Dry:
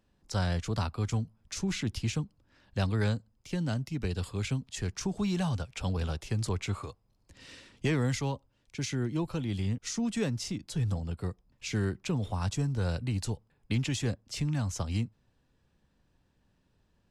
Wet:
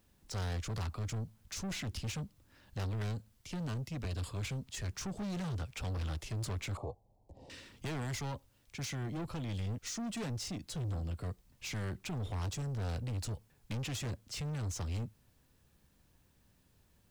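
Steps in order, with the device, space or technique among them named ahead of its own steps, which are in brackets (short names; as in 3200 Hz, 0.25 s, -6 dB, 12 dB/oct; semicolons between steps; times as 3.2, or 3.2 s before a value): open-reel tape (soft clip -36.5 dBFS, distortion -7 dB; bell 82 Hz +3.5 dB 1.2 oct; white noise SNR 37 dB); 6.77–7.5 EQ curve 260 Hz 0 dB, 820 Hz +11 dB, 1400 Hz -27 dB, 4300 Hz -18 dB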